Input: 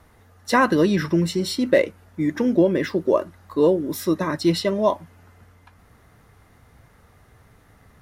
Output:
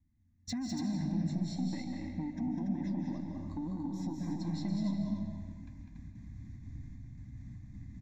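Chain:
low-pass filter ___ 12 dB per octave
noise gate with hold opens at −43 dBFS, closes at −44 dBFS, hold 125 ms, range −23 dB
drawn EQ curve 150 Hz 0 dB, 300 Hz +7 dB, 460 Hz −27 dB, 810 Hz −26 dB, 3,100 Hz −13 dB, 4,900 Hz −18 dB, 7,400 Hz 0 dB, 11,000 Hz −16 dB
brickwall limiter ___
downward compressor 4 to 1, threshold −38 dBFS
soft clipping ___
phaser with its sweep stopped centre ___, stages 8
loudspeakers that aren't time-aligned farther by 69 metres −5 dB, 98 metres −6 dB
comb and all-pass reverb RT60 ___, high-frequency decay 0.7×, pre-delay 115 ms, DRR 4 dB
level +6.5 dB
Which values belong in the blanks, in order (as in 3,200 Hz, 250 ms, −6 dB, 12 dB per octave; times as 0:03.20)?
6,100 Hz, −15.5 dBFS, −31 dBFS, 2,000 Hz, 1.7 s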